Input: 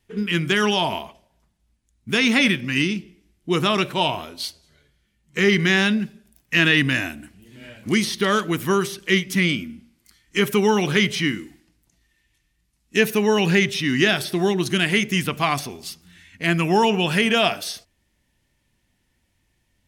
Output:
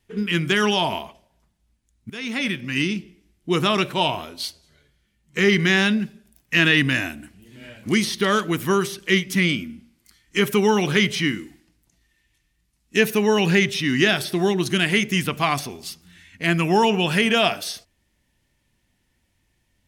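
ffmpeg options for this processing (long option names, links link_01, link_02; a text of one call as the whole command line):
ffmpeg -i in.wav -filter_complex "[0:a]asplit=2[link_01][link_02];[link_01]atrim=end=2.1,asetpts=PTS-STARTPTS,afade=type=out:start_time=2.096:duration=0.004:curve=hsin:silence=0.11885[link_03];[link_02]atrim=start=2.1,asetpts=PTS-STARTPTS,afade=type=in:duration=0.88:silence=0.11885[link_04];[link_03][link_04]concat=n=2:v=0:a=1" out.wav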